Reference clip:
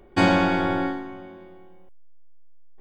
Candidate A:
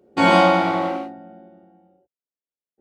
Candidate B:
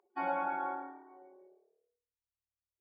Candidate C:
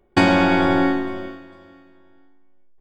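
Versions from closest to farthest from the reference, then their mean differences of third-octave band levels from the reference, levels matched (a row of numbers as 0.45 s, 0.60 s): C, A, B; 3.0 dB, 4.5 dB, 9.0 dB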